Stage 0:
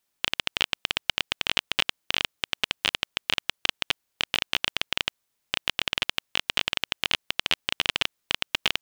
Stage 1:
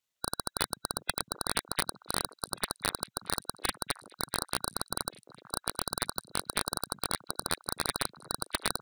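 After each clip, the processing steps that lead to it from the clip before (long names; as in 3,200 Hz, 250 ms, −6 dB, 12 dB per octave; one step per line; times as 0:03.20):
running median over 9 samples
gate on every frequency bin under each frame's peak −10 dB weak
echo through a band-pass that steps 370 ms, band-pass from 160 Hz, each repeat 1.4 octaves, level −10.5 dB
level +5 dB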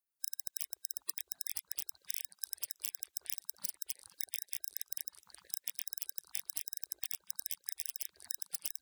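gate on every frequency bin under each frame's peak −15 dB weak
high-shelf EQ 4,200 Hz +6 dB
downward compressor, threshold −40 dBFS, peak gain reduction 12 dB
level +6.5 dB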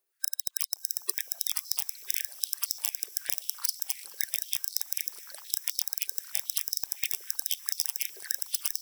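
feedback delay with all-pass diffusion 669 ms, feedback 54%, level −15 dB
high-pass on a step sequencer 7.9 Hz 410–4,600 Hz
level +8.5 dB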